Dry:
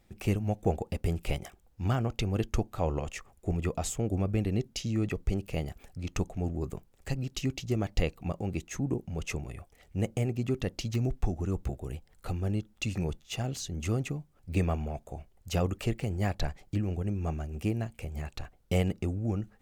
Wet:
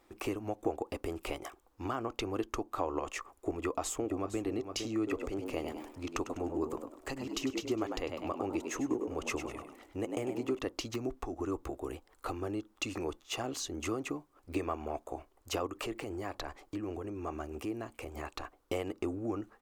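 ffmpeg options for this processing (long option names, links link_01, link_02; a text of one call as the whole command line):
ffmpeg -i in.wav -filter_complex "[0:a]asplit=2[link_01][link_02];[link_02]afade=type=in:start_time=3.53:duration=0.01,afade=type=out:start_time=4.41:duration=0.01,aecho=0:1:460|920|1380:0.266073|0.0665181|0.0166295[link_03];[link_01][link_03]amix=inputs=2:normalize=0,asettb=1/sr,asplit=3[link_04][link_05][link_06];[link_04]atrim=end=4.974[link_07];[link_05]atrim=start=4.97:end=10.59,asetpts=PTS-STARTPTS,afade=type=in:duration=0.004:curve=qsin,afade=type=out:start_time=5.616:duration=0.004:curve=qsin,asplit=5[link_08][link_09][link_10][link_11][link_12];[link_09]adelay=100,afreqshift=74,volume=-9dB[link_13];[link_10]adelay=200,afreqshift=148,volume=-18.4dB[link_14];[link_11]adelay=300,afreqshift=222,volume=-27.7dB[link_15];[link_12]adelay=400,afreqshift=296,volume=-37.1dB[link_16];[link_08][link_13][link_14][link_15][link_16]amix=inputs=5:normalize=0,atrim=end_sample=247842[link_17];[link_06]atrim=start=10.586[link_18];[link_07][link_17]acrossfade=duration=0.004:curve1=hsin:curve2=qsin[link_19];[link_19][link_18]acrossfade=duration=0.004:curve1=qsin:curve2=hsin,asplit=3[link_20][link_21][link_22];[link_20]afade=type=out:start_time=15.66:duration=0.02[link_23];[link_21]acompressor=threshold=-32dB:ratio=6:attack=3.2:release=140:knee=1:detection=peak,afade=type=in:start_time=15.66:duration=0.02,afade=type=out:start_time=18.12:duration=0.02[link_24];[link_22]afade=type=in:start_time=18.12:duration=0.02[link_25];[link_23][link_24][link_25]amix=inputs=3:normalize=0,equalizer=frequency=1100:width=2.2:gain=12,acompressor=threshold=-30dB:ratio=6,lowshelf=frequency=230:width_type=q:width=3:gain=-9" out.wav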